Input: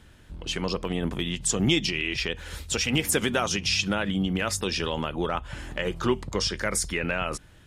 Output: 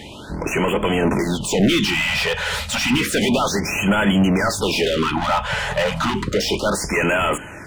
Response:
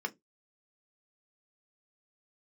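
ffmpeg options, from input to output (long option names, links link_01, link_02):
-filter_complex "[0:a]asplit=2[link_01][link_02];[link_02]highpass=frequency=720:poles=1,volume=33dB,asoftclip=type=tanh:threshold=-10dB[link_03];[link_01][link_03]amix=inputs=2:normalize=0,lowpass=frequency=2000:poles=1,volume=-6dB,asplit=2[link_04][link_05];[1:a]atrim=start_sample=2205,atrim=end_sample=3969[link_06];[link_05][link_06]afir=irnorm=-1:irlink=0,volume=-11.5dB[link_07];[link_04][link_07]amix=inputs=2:normalize=0,afftfilt=real='re*(1-between(b*sr/1024,280*pow(4900/280,0.5+0.5*sin(2*PI*0.31*pts/sr))/1.41,280*pow(4900/280,0.5+0.5*sin(2*PI*0.31*pts/sr))*1.41))':imag='im*(1-between(b*sr/1024,280*pow(4900/280,0.5+0.5*sin(2*PI*0.31*pts/sr))/1.41,280*pow(4900/280,0.5+0.5*sin(2*PI*0.31*pts/sr))*1.41))':win_size=1024:overlap=0.75,volume=2.5dB"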